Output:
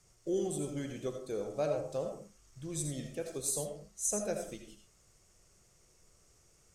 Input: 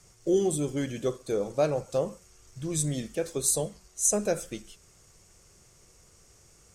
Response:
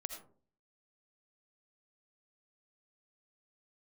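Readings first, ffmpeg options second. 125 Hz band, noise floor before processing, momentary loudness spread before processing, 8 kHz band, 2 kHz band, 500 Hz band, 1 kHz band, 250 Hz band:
-8.0 dB, -59 dBFS, 10 LU, -8.0 dB, -8.0 dB, -7.5 dB, -7.5 dB, -8.0 dB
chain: -filter_complex "[1:a]atrim=start_sample=2205,afade=t=out:st=0.29:d=0.01,atrim=end_sample=13230[s0];[0:a][s0]afir=irnorm=-1:irlink=0,volume=0.501"

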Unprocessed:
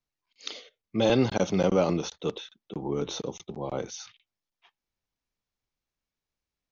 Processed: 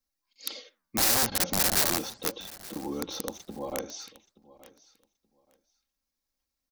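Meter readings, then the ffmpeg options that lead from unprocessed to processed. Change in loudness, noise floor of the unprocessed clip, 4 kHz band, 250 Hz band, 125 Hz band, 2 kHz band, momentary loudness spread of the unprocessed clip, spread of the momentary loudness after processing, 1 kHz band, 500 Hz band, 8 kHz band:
+1.5 dB, under -85 dBFS, +5.5 dB, -7.5 dB, -9.5 dB, +4.5 dB, 18 LU, 18 LU, 0.0 dB, -9.5 dB, no reading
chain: -filter_complex "[0:a]acrossover=split=5300[s0][s1];[s1]acompressor=threshold=0.00141:ratio=4:attack=1:release=60[s2];[s0][s2]amix=inputs=2:normalize=0,highshelf=f=4700:g=-6,aecho=1:1:3.7:0.68,asplit=2[s3][s4];[s4]acompressor=threshold=0.02:ratio=16,volume=0.708[s5];[s3][s5]amix=inputs=2:normalize=0,flanger=delay=4.3:depth=10:regen=-86:speed=1.7:shape=sinusoidal,aeval=exprs='(mod(12.6*val(0)+1,2)-1)/12.6':c=same,aexciter=amount=3.8:drive=3:freq=4200,asplit=2[s6][s7];[s7]aecho=0:1:876|1752:0.1|0.02[s8];[s6][s8]amix=inputs=2:normalize=0,volume=0.794"

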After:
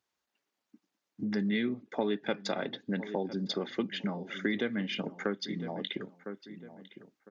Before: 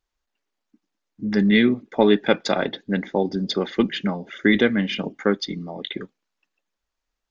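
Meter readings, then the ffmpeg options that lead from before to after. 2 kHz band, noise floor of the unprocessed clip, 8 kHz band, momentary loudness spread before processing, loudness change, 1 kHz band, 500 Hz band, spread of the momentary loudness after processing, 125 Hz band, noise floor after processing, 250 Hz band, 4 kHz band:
-12.0 dB, -82 dBFS, no reading, 14 LU, -12.5 dB, -11.5 dB, -12.5 dB, 14 LU, -11.0 dB, under -85 dBFS, -12.0 dB, -10.0 dB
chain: -filter_complex "[0:a]highpass=f=97:w=0.5412,highpass=f=97:w=1.3066,asplit=2[s0][s1];[s1]adelay=1005,lowpass=f=1900:p=1,volume=0.106,asplit=2[s2][s3];[s3]adelay=1005,lowpass=f=1900:p=1,volume=0.23[s4];[s0][s2][s4]amix=inputs=3:normalize=0,acompressor=threshold=0.0178:ratio=2.5"

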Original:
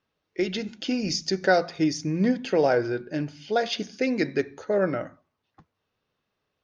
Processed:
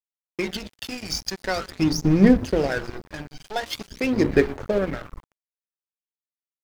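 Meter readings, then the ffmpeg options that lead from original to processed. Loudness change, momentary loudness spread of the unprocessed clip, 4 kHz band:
+2.5 dB, 9 LU, +0.5 dB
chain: -filter_complex "[0:a]asplit=2[s0][s1];[s1]acompressor=threshold=0.0224:ratio=8,volume=1[s2];[s0][s2]amix=inputs=2:normalize=0,bandreject=f=60:t=h:w=6,bandreject=f=120:t=h:w=6,bandreject=f=180:t=h:w=6,bandreject=f=240:t=h:w=6,bandreject=f=300:t=h:w=6,bandreject=f=360:t=h:w=6,bandreject=f=420:t=h:w=6,bandreject=f=480:t=h:w=6,asplit=2[s3][s4];[s4]asplit=6[s5][s6][s7][s8][s9][s10];[s5]adelay=120,afreqshift=-150,volume=0.141[s11];[s6]adelay=240,afreqshift=-300,volume=0.0871[s12];[s7]adelay=360,afreqshift=-450,volume=0.0543[s13];[s8]adelay=480,afreqshift=-600,volume=0.0335[s14];[s9]adelay=600,afreqshift=-750,volume=0.0209[s15];[s10]adelay=720,afreqshift=-900,volume=0.0129[s16];[s11][s12][s13][s14][s15][s16]amix=inputs=6:normalize=0[s17];[s3][s17]amix=inputs=2:normalize=0,asubboost=boost=2:cutoff=74,aphaser=in_gain=1:out_gain=1:delay=1.3:decay=0.7:speed=0.45:type=sinusoidal,acrusher=bits=8:mix=0:aa=0.5,aeval=exprs='sgn(val(0))*max(abs(val(0))-0.0355,0)':c=same,volume=0.841"

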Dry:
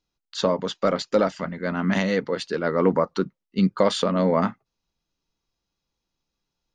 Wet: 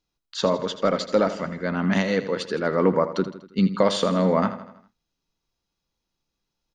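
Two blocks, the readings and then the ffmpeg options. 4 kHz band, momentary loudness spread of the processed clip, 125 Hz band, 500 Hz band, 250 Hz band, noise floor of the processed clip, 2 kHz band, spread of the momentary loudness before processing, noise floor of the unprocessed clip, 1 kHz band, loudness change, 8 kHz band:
+0.5 dB, 8 LU, +0.5 dB, +0.5 dB, +0.5 dB, -82 dBFS, 0.0 dB, 7 LU, -83 dBFS, +0.5 dB, +0.5 dB, +0.5 dB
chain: -af "aecho=1:1:81|162|243|324|405:0.237|0.121|0.0617|0.0315|0.016"

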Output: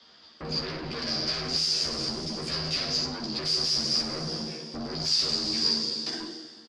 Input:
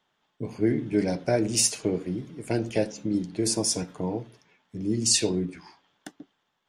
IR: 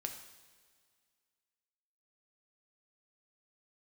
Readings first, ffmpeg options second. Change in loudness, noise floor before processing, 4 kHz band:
-0.5 dB, -75 dBFS, +8.5 dB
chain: -filter_complex "[1:a]atrim=start_sample=2205,asetrate=52920,aresample=44100[s0];[0:a][s0]afir=irnorm=-1:irlink=0,asoftclip=type=tanh:threshold=0.0398,equalizer=f=2300:w=1.5:g=-3,acrossover=split=150|1200[s1][s2][s3];[s1]acompressor=threshold=0.00631:ratio=4[s4];[s2]acompressor=threshold=0.00708:ratio=4[s5];[s3]acompressor=threshold=0.00891:ratio=4[s6];[s4][s5][s6]amix=inputs=3:normalize=0,afreqshift=42,acompressor=threshold=0.00794:ratio=6,aeval=exprs='0.0335*(cos(1*acos(clip(val(0)/0.0335,-1,1)))-cos(1*PI/2))+0.00668*(cos(5*acos(clip(val(0)/0.0335,-1,1)))-cos(5*PI/2))':c=same,aeval=exprs='0.0447*sin(PI/2*5.01*val(0)/0.0447)':c=same,lowpass=f=4800:t=q:w=15,equalizer=f=870:w=6.6:g=-9,aecho=1:1:13|64:0.708|0.355,volume=0.422"

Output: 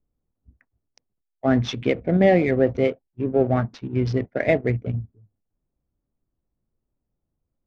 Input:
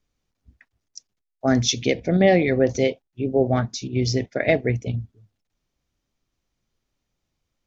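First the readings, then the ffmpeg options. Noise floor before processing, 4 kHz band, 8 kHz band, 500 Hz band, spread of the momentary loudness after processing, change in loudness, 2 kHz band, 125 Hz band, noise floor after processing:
-80 dBFS, -8.5 dB, no reading, 0.0 dB, 10 LU, -0.5 dB, -2.0 dB, 0.0 dB, -81 dBFS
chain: -af "adynamicsmooth=sensitivity=6:basefreq=830,lowpass=2400"

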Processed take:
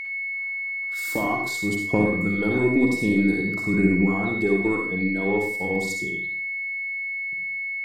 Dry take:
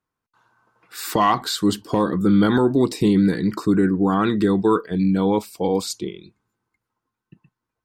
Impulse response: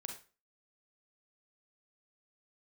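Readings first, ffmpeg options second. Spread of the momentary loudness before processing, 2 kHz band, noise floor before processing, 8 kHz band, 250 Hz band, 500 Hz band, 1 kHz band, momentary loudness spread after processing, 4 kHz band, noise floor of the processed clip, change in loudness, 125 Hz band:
8 LU, +11.5 dB, -84 dBFS, -4.5 dB, -4.0 dB, -3.5 dB, -9.0 dB, 7 LU, -10.0 dB, -30 dBFS, -3.5 dB, -4.5 dB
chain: -filter_complex "[0:a]acrossover=split=850|5100[s0][s1][s2];[s1]acompressor=threshold=0.00794:ratio=6[s3];[s0][s3][s2]amix=inputs=3:normalize=0,aphaser=in_gain=1:out_gain=1:delay=4.4:decay=0.47:speed=0.51:type=triangular,aeval=exprs='val(0)+0.0708*sin(2*PI*2200*n/s)':c=same,aeval=exprs='0.891*(cos(1*acos(clip(val(0)/0.891,-1,1)))-cos(1*PI/2))+0.126*(cos(2*acos(clip(val(0)/0.891,-1,1)))-cos(2*PI/2))':c=same[s4];[1:a]atrim=start_sample=2205,asetrate=32634,aresample=44100[s5];[s4][s5]afir=irnorm=-1:irlink=0,volume=0.668"

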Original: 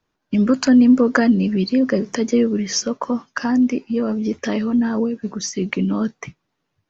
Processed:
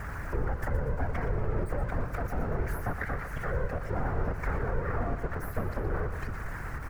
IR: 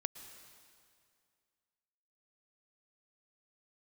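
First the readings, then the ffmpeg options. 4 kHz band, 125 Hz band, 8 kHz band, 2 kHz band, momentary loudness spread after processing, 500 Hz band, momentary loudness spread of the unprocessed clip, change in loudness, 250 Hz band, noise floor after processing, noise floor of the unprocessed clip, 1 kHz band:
-27.5 dB, -2.5 dB, no reading, -9.0 dB, 3 LU, -12.5 dB, 11 LU, -15.0 dB, -24.0 dB, -38 dBFS, -75 dBFS, -6.0 dB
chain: -filter_complex "[0:a]aeval=exprs='val(0)+0.5*0.075*sgn(val(0))':c=same,equalizer=f=3500:w=2.3:g=-13.5,bandreject=f=1400:w=7,aeval=exprs='abs(val(0))':c=same,acrossover=split=170|3000[s0][s1][s2];[s1]acompressor=threshold=0.0794:ratio=6[s3];[s0][s3][s2]amix=inputs=3:normalize=0,alimiter=limit=0.158:level=0:latency=1:release=54,acompressor=threshold=0.0447:ratio=1.5,afftfilt=real='hypot(re,im)*cos(2*PI*random(0))':imag='hypot(re,im)*sin(2*PI*random(1))':win_size=512:overlap=0.75,highshelf=f=2400:t=q:w=3:g=-12.5,aecho=1:1:119|238|357|476|595|714:0.282|0.152|0.0822|0.0444|0.024|0.0129,volume=1.19"

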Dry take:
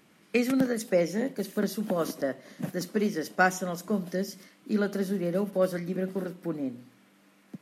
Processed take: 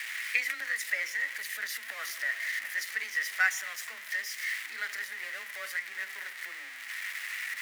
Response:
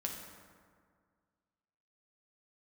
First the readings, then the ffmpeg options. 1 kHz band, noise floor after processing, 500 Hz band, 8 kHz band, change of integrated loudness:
-11.0 dB, -44 dBFS, -26.0 dB, +2.0 dB, -3.5 dB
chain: -af "aeval=exprs='val(0)+0.5*0.0299*sgn(val(0))':c=same,highpass=f=1900:t=q:w=7,afreqshift=21,volume=0.531"

